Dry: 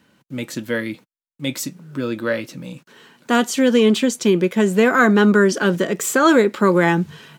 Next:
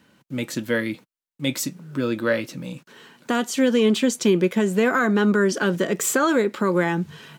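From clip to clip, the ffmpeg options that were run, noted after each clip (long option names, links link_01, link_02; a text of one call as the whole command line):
ffmpeg -i in.wav -af "alimiter=limit=-9.5dB:level=0:latency=1:release=418" out.wav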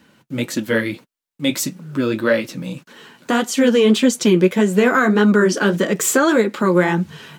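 ffmpeg -i in.wav -af "flanger=delay=3.5:depth=7.8:regen=-36:speed=1.7:shape=sinusoidal,volume=8.5dB" out.wav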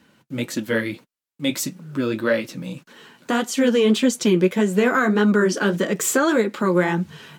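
ffmpeg -i in.wav -af "volume=-3.5dB" -ar 48000 -c:a libopus -b:a 256k out.opus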